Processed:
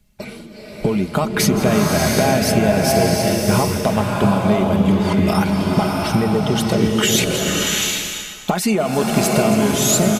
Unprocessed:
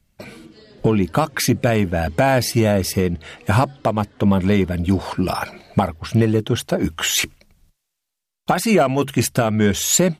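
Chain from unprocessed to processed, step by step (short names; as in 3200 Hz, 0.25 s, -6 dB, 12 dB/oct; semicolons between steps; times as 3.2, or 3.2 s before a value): reverse delay 0.303 s, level -13 dB; bell 1600 Hz -3 dB; comb 4.8 ms, depth 44%; compressor, threshold -19 dBFS, peak gain reduction 10 dB; bloom reverb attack 0.73 s, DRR -1.5 dB; gain +4 dB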